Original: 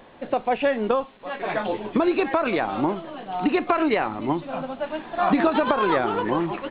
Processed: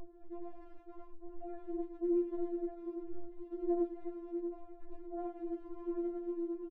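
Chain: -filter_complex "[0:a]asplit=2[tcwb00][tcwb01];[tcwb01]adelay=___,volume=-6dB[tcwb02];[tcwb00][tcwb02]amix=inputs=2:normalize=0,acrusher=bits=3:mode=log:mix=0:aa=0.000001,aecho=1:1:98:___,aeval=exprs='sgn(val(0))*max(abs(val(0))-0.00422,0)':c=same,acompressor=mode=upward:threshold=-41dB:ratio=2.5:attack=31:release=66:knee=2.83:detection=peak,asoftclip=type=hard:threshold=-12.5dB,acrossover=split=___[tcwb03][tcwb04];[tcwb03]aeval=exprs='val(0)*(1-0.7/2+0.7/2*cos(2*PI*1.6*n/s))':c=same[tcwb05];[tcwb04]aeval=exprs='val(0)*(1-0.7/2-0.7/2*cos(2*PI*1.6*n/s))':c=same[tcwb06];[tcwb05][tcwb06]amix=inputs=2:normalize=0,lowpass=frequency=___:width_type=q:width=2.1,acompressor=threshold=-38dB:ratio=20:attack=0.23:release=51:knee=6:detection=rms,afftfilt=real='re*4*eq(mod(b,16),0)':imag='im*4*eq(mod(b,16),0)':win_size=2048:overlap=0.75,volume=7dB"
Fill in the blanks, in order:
23, 0.708, 1200, 180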